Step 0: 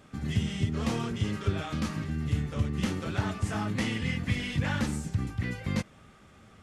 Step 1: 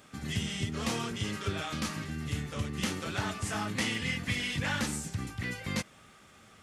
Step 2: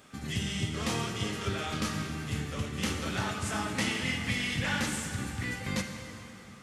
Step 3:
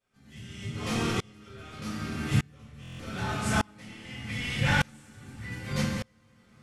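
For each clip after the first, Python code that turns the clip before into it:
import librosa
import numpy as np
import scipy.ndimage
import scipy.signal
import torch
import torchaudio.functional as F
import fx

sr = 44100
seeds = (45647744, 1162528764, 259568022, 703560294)

y1 = fx.tilt_eq(x, sr, slope=2.0)
y2 = fx.rev_plate(y1, sr, seeds[0], rt60_s=3.2, hf_ratio=0.8, predelay_ms=0, drr_db=3.5)
y3 = fx.room_shoebox(y2, sr, seeds[1], volume_m3=180.0, walls='furnished', distance_m=4.7)
y3 = fx.buffer_glitch(y3, sr, at_s=(2.81,), block=1024, repeats=7)
y3 = fx.tremolo_decay(y3, sr, direction='swelling', hz=0.83, depth_db=32)
y3 = y3 * 10.0 ** (-1.5 / 20.0)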